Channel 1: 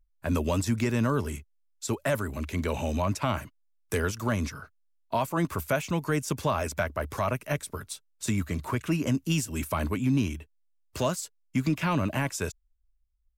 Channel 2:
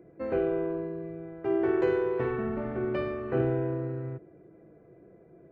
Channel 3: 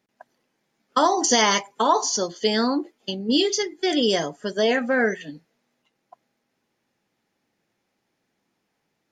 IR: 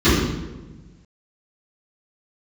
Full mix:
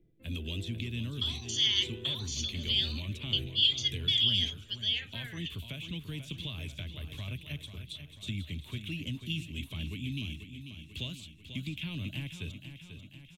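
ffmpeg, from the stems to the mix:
-filter_complex "[0:a]acrossover=split=120|1400|6600[link_01][link_02][link_03][link_04];[link_01]acompressor=threshold=-39dB:ratio=4[link_05];[link_02]acompressor=threshold=-26dB:ratio=4[link_06];[link_03]acompressor=threshold=-41dB:ratio=4[link_07];[link_04]acompressor=threshold=-58dB:ratio=4[link_08];[link_05][link_06][link_07][link_08]amix=inputs=4:normalize=0,volume=-2dB,asplit=2[link_09][link_10];[link_10]volume=-9.5dB[link_11];[1:a]tremolo=f=1.5:d=0.7,lowpass=1900,volume=-4.5dB[link_12];[2:a]alimiter=limit=-16dB:level=0:latency=1,highpass=1100,adelay=250,volume=-2.5dB[link_13];[link_11]aecho=0:1:491|982|1473|1964|2455|2946|3437|3928|4419:1|0.58|0.336|0.195|0.113|0.0656|0.0381|0.0221|0.0128[link_14];[link_09][link_12][link_13][link_14]amix=inputs=4:normalize=0,firequalizer=gain_entry='entry(100,0);entry(140,-5);entry(580,-22);entry(960,-25);entry(1400,-22);entry(2400,0);entry(3400,12);entry(4900,-12);entry(11000,-3)':delay=0.05:min_phase=1"

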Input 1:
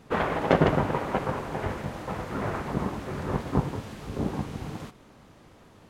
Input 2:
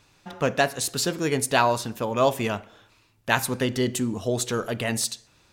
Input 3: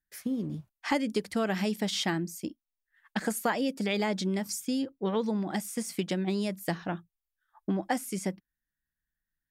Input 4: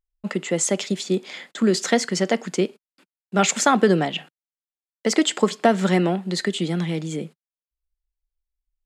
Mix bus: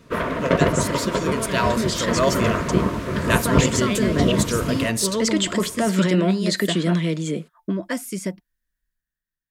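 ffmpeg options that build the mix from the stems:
ffmpeg -i stem1.wav -i stem2.wav -i stem3.wav -i stem4.wav -filter_complex "[0:a]volume=2.5dB[link_01];[1:a]volume=-5dB[link_02];[2:a]volume=-4dB[link_03];[3:a]alimiter=limit=-15dB:level=0:latency=1:release=12,adelay=150,volume=-6dB[link_04];[link_01][link_02][link_03][link_04]amix=inputs=4:normalize=0,dynaudnorm=framelen=260:gausssize=7:maxgain=9dB,asuperstop=centerf=800:order=20:qfactor=4.9" out.wav

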